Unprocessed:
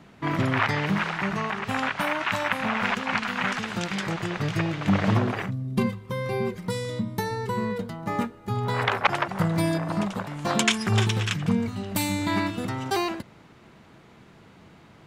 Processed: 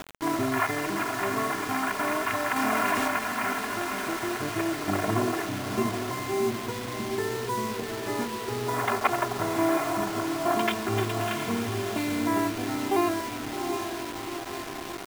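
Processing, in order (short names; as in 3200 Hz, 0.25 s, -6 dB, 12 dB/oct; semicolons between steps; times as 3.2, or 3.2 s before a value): HPF 290 Hz 6 dB/oct; tape spacing loss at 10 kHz 25 dB; diffused feedback echo 0.743 s, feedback 45%, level -5 dB; upward compressor, threshold -33 dBFS; high shelf 3400 Hz -10.5 dB; comb 2.9 ms, depth 94%; bit-crush 6-bit; 2.56–3.08 fast leveller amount 70%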